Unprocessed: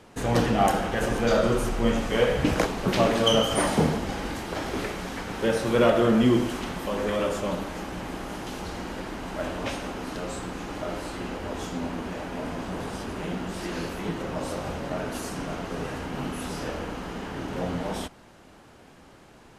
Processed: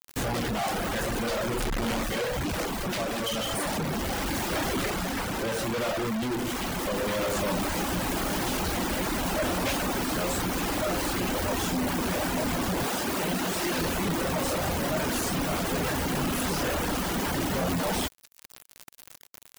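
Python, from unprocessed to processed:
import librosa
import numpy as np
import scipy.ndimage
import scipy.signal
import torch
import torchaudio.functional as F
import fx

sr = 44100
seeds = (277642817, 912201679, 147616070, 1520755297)

y = fx.notch(x, sr, hz=440.0, q=12.0)
y = fx.quant_dither(y, sr, seeds[0], bits=8, dither='triangular')
y = fx.schmitt(y, sr, flips_db=-40.0, at=(1.6, 2.03))
y = fx.high_shelf(y, sr, hz=5300.0, db=-10.5, at=(4.9, 5.54))
y = fx.highpass(y, sr, hz=240.0, slope=6, at=(12.84, 13.81))
y = fx.quant_companded(y, sr, bits=2)
y = fx.rider(y, sr, range_db=10, speed_s=2.0)
y = 10.0 ** (-20.0 / 20.0) * np.tanh(y / 10.0 ** (-20.0 / 20.0))
y = fx.dereverb_blind(y, sr, rt60_s=0.66)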